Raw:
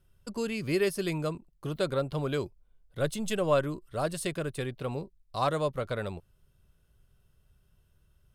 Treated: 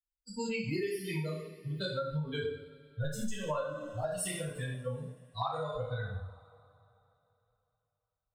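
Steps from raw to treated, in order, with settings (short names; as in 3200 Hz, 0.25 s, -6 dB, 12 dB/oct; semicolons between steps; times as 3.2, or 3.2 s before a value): per-bin expansion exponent 3; two-slope reverb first 0.59 s, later 3.2 s, from -27 dB, DRR -9.5 dB; compressor 12:1, threshold -31 dBFS, peak gain reduction 16 dB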